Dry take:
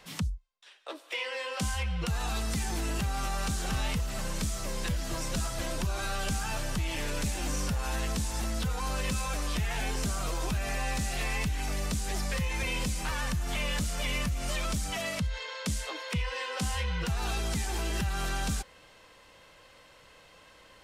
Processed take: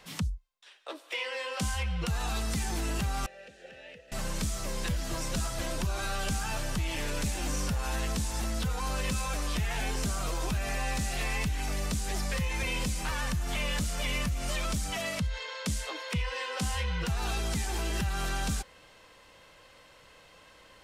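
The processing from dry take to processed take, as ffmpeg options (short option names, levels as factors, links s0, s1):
-filter_complex "[0:a]asettb=1/sr,asplit=3[s0][s1][s2];[s0]atrim=end=3.264[s3];[s1]atrim=start=3.26:end=4.12,asetpts=PTS-STARTPTS,afade=t=in:d=0.004:c=qsin,afade=t=out:st=0.856:d=0.004:c=qsin,asplit=3[s4][s5][s6];[s4]bandpass=f=530:t=q:w=8,volume=1[s7];[s5]bandpass=f=1840:t=q:w=8,volume=0.501[s8];[s6]bandpass=f=2480:t=q:w=8,volume=0.355[s9];[s7][s8][s9]amix=inputs=3:normalize=0[s10];[s2]atrim=start=4.116[s11];[s3][s10]acrossfade=d=0.004:c1=hsin:c2=qsin[s12];[s12][s11]acrossfade=d=0.004:c1=qsin:c2=hsin"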